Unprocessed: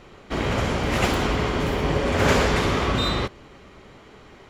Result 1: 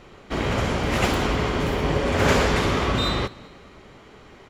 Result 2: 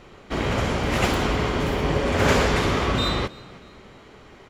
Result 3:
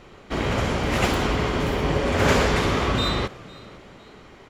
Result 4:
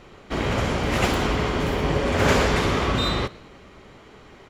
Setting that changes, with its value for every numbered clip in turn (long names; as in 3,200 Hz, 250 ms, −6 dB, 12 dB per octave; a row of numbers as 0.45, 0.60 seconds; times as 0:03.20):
echo with shifted repeats, delay time: 206, 316, 504, 117 milliseconds